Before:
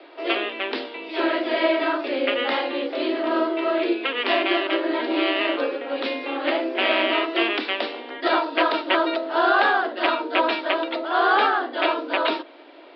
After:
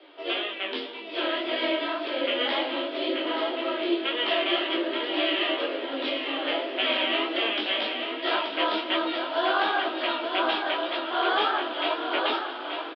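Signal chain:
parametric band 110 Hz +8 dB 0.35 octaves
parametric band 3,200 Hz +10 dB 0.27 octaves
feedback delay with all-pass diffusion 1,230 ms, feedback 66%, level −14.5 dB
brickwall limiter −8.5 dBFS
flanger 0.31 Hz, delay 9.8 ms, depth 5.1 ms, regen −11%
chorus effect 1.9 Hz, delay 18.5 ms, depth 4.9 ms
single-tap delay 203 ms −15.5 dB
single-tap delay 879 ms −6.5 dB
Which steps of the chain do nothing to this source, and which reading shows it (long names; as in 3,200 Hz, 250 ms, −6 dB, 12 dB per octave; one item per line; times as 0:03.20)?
parametric band 110 Hz: nothing at its input below 210 Hz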